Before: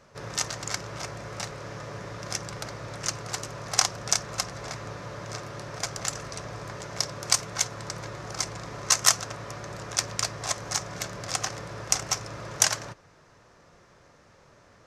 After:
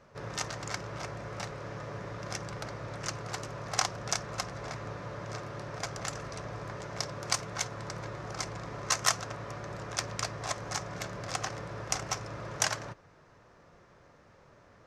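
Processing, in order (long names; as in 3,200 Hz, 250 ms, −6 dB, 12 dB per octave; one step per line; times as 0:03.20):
high-shelf EQ 4,200 Hz −10.5 dB
level −1.5 dB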